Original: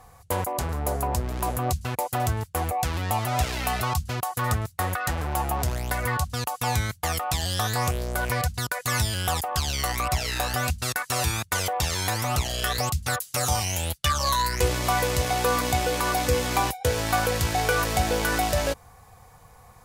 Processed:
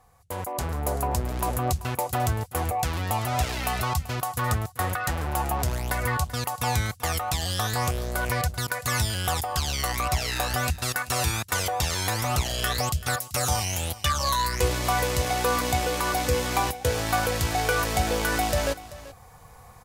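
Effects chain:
automatic gain control gain up to 11.5 dB
on a send: single-tap delay 385 ms −17 dB
on the sum: level −9 dB

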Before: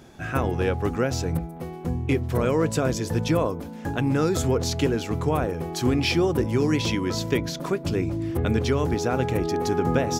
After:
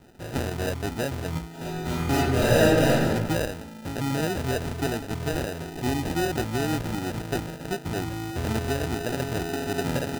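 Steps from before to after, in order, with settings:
decimation without filtering 40×
0:01.49–0:03.09: thrown reverb, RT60 1.1 s, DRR −6.5 dB
0:05.70–0:06.14: Butterworth band-reject 1,400 Hz, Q 7.9
level −4.5 dB

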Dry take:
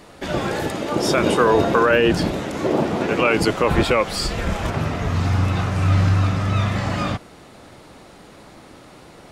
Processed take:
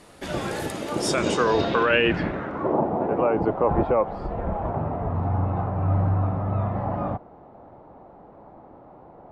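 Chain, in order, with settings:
low-pass filter sweep 11,000 Hz → 820 Hz, 0:00.95–0:02.86
level −5.5 dB

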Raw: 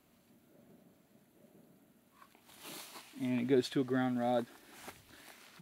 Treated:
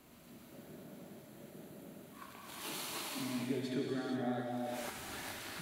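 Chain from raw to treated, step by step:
downward compressor 4 to 1, threshold −49 dBFS, peak gain reduction 20 dB
reverb whose tail is shaped and stops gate 500 ms flat, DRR −3 dB
level +7 dB

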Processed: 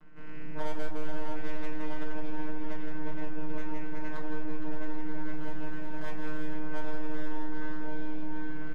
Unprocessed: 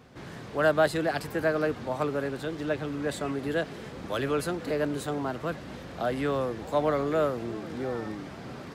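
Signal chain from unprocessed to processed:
delay that plays each chunk backwards 309 ms, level −14 dB
auto-filter low-pass square 0.84 Hz 750–1,500 Hz
channel vocoder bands 8, saw 153 Hz
half-wave rectification
multi-tap delay 90/163/372/466 ms −18/−4/−7.5/−7 dB
soft clipping −20.5 dBFS, distortion −12 dB
echo through a band-pass that steps 788 ms, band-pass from 3,700 Hz, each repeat −0.7 octaves, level −7 dB
rectangular room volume 220 cubic metres, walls furnished, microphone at 1.5 metres
downward compressor 2.5 to 1, threshold −19 dBFS, peak gain reduction 8 dB
0:05.33–0:06.54: high-shelf EQ 5,400 Hz +7 dB
level −3.5 dB

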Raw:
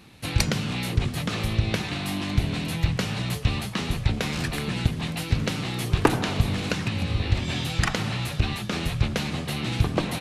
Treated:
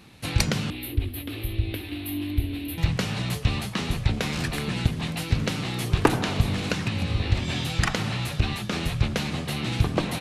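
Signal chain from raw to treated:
0:00.70–0:02.78: drawn EQ curve 100 Hz 0 dB, 170 Hz −30 dB, 290 Hz +5 dB, 450 Hz −9 dB, 1,200 Hz −16 dB, 2,700 Hz −5 dB, 3,900 Hz −7 dB, 6,500 Hz −27 dB, 13,000 Hz +12 dB

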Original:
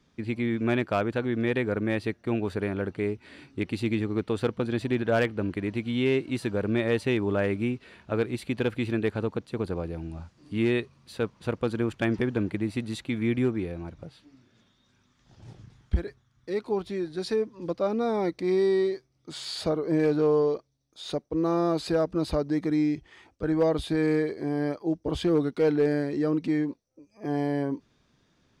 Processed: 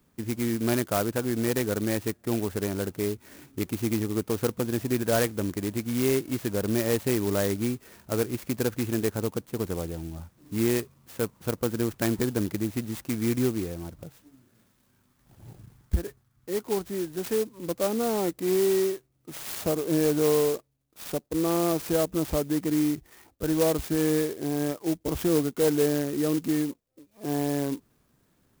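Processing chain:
converter with an unsteady clock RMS 0.085 ms

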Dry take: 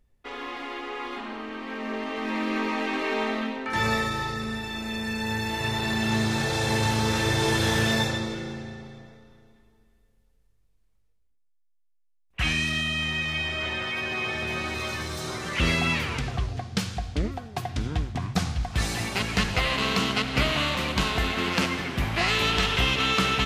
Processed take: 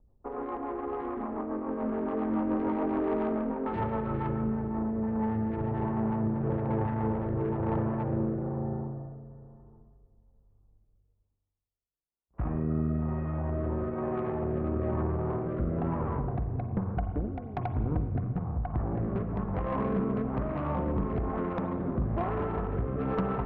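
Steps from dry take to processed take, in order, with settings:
Butterworth low-pass 1,100 Hz 36 dB per octave
downward compressor 10 to 1, threshold −28 dBFS, peak gain reduction 9.5 dB
tube saturation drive 29 dB, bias 0.45
rotating-speaker cabinet horn 7 Hz, later 1.1 Hz, at 0:04.27
spring reverb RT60 1.7 s, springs 41/51 ms, chirp 55 ms, DRR 9 dB
level +7 dB

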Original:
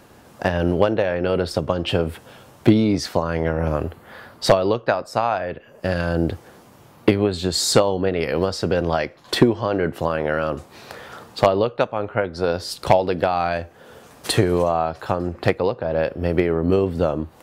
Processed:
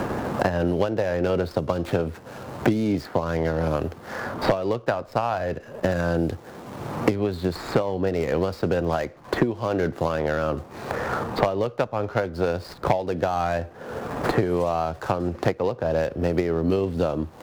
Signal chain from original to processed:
running median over 15 samples
multiband upward and downward compressor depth 100%
level −3.5 dB

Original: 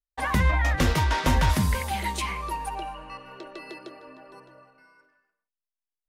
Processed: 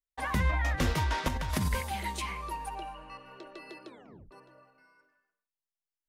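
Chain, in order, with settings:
0:01.28–0:01.81: compressor whose output falls as the input rises −23 dBFS, ratio −0.5
0:03.86: tape stop 0.45 s
level −6 dB

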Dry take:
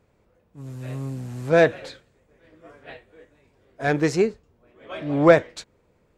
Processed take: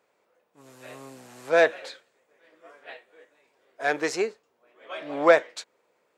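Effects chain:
high-pass filter 540 Hz 12 dB per octave

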